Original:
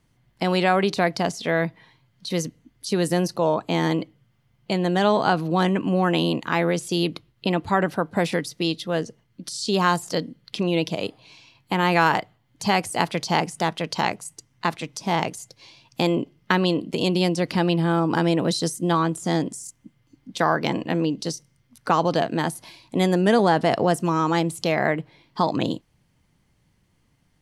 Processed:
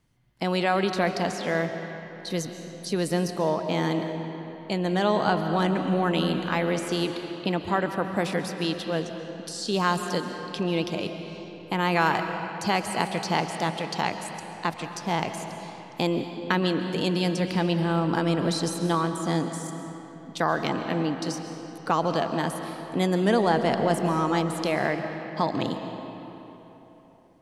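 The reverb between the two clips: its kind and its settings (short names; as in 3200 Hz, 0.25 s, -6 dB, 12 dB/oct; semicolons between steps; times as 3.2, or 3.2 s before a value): digital reverb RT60 3.7 s, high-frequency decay 0.65×, pre-delay 95 ms, DRR 6.5 dB; gain -4 dB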